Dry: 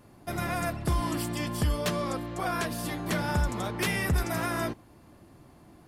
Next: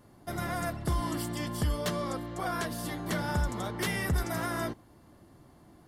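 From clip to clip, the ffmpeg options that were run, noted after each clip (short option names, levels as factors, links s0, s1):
-af "bandreject=f=2500:w=6.8,volume=0.75"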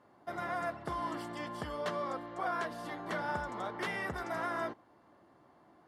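-af "bandpass=f=980:t=q:w=0.69:csg=0"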